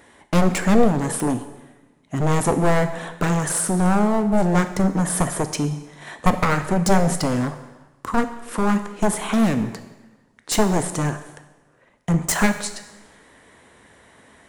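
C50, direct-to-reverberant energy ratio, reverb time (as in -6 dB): 11.0 dB, 8.5 dB, 1.1 s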